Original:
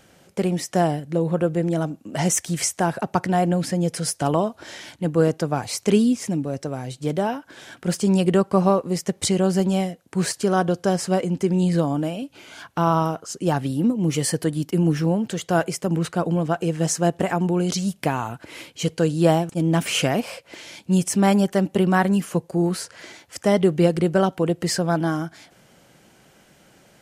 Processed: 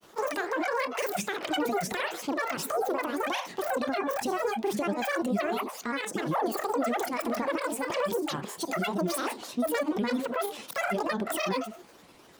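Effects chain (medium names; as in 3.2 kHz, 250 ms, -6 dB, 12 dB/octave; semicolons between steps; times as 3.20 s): compression 2.5:1, threshold -25 dBFS, peak gain reduction 9.5 dB; on a send at -12 dB: reverberation RT60 0.70 s, pre-delay 77 ms; on the sum: peak limiter -19.5 dBFS, peak gain reduction 9 dB; wide varispeed 2.18×; granulator, grains 20 per s, spray 23 ms, pitch spread up and down by 12 st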